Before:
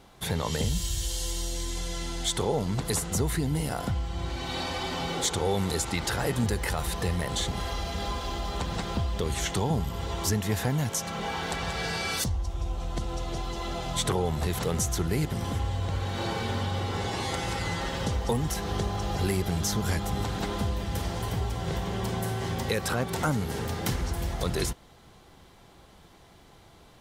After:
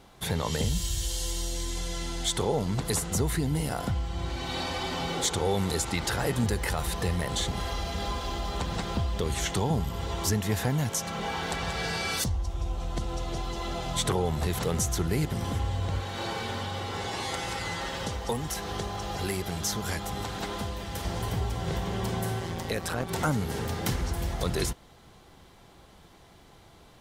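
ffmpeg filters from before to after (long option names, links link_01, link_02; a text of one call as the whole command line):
ffmpeg -i in.wav -filter_complex "[0:a]asettb=1/sr,asplit=3[link_01][link_02][link_03];[link_01]atrim=end=16.014[link_04];[link_02]atrim=start=16.01:end=21.05,asetpts=PTS-STARTPTS,afade=type=in:duration=0.004:curve=qsin,afade=type=out:start_time=5.036:duration=0.004:curve=qsin,lowshelf=frequency=350:gain=-7[link_05];[link_03]atrim=start=21.046[link_06];[link_04][link_05]acrossfade=duration=0.004:curve1=hsin:curve2=qsin[link_07];[link_07][link_06]acrossfade=duration=0.004:curve1=qsin:curve2=hsin,asplit=3[link_08][link_09][link_10];[link_08]afade=type=out:start_time=22.39:duration=0.02[link_11];[link_09]tremolo=f=170:d=0.667,afade=type=in:start_time=22.39:duration=0.02,afade=type=out:start_time=23.08:duration=0.02[link_12];[link_10]afade=type=in:start_time=23.08:duration=0.02[link_13];[link_11][link_12][link_13]amix=inputs=3:normalize=0" out.wav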